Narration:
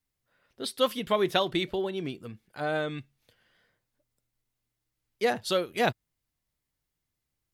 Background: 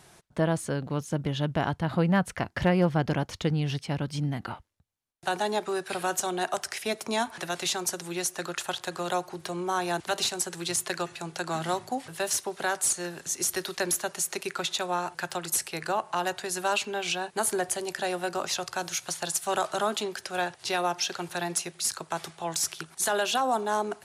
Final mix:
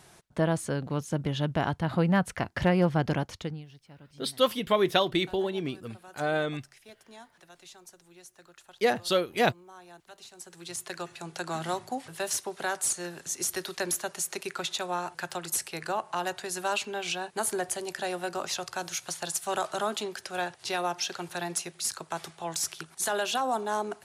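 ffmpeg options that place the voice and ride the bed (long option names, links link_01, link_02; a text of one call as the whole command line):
ffmpeg -i stem1.wav -i stem2.wav -filter_complex "[0:a]adelay=3600,volume=1.5dB[link_01];[1:a]volume=18.5dB,afade=type=out:start_time=3.15:duration=0.51:silence=0.0891251,afade=type=in:start_time=10.28:duration=1.12:silence=0.112202[link_02];[link_01][link_02]amix=inputs=2:normalize=0" out.wav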